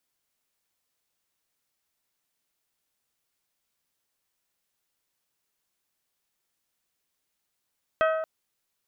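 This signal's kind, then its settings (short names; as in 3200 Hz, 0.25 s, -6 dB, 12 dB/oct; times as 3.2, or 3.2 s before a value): glass hit bell, length 0.23 s, lowest mode 638 Hz, modes 6, decay 1.39 s, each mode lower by 4 dB, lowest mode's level -19.5 dB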